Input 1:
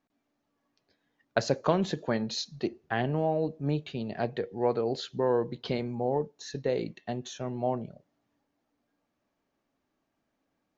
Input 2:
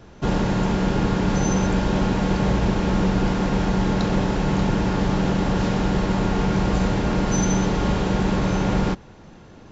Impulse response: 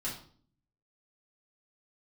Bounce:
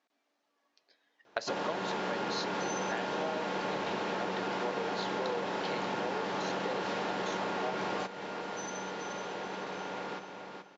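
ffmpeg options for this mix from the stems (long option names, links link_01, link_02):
-filter_complex "[0:a]highshelf=frequency=3900:gain=8,volume=3dB,asplit=2[link_01][link_02];[1:a]acontrast=30,adelay=1250,volume=-1dB,asplit=2[link_03][link_04];[link_04]volume=-21.5dB[link_05];[link_02]apad=whole_len=483763[link_06];[link_03][link_06]sidechaingate=range=-15dB:threshold=-54dB:ratio=16:detection=peak[link_07];[link_05]aecho=0:1:428|856|1284|1712:1|0.26|0.0676|0.0176[link_08];[link_01][link_07][link_08]amix=inputs=3:normalize=0,highpass=460,lowpass=5200,acompressor=threshold=-33dB:ratio=4"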